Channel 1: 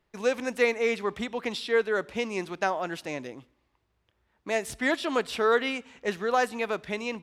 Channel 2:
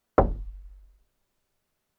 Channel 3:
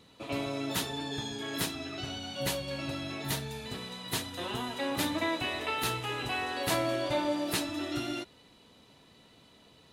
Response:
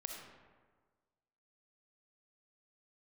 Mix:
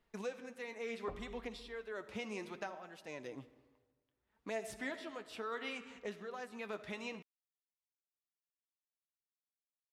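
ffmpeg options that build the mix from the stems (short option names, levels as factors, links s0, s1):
-filter_complex "[0:a]flanger=delay=4.2:depth=5.5:regen=42:speed=0.67:shape=sinusoidal,tremolo=f=0.86:d=0.82,volume=0.891,asplit=2[s0][s1];[s1]volume=0.237[s2];[1:a]adelay=900,volume=0.316[s3];[s0][s3]amix=inputs=2:normalize=0,acompressor=threshold=0.00708:ratio=6,volume=1[s4];[3:a]atrim=start_sample=2205[s5];[s2][s5]afir=irnorm=-1:irlink=0[s6];[s4][s6]amix=inputs=2:normalize=0"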